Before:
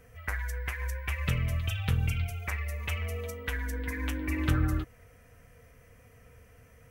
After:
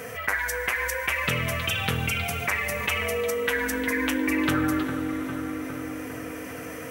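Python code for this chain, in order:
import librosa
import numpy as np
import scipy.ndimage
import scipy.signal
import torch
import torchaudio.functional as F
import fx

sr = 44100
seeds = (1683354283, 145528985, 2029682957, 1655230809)

y = scipy.signal.sosfilt(scipy.signal.butter(2, 240.0, 'highpass', fs=sr, output='sos'), x)
y = fx.echo_wet_lowpass(y, sr, ms=405, feedback_pct=56, hz=1300.0, wet_db=-12.0)
y = fx.rev_schroeder(y, sr, rt60_s=3.7, comb_ms=26, drr_db=13.5)
y = fx.env_flatten(y, sr, amount_pct=50)
y = y * 10.0 ** (7.5 / 20.0)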